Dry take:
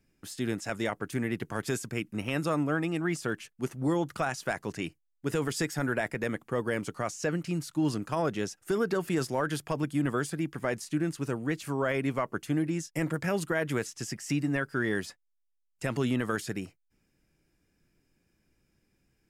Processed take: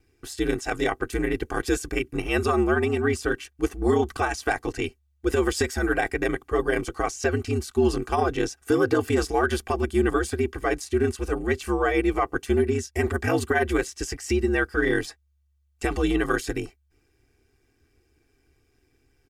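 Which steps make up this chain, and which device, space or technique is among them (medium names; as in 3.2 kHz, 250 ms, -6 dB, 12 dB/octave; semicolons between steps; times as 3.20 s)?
treble shelf 7.2 kHz -4 dB; ring-modulated robot voice (ring modulator 71 Hz; comb 2.6 ms, depth 80%); trim +7.5 dB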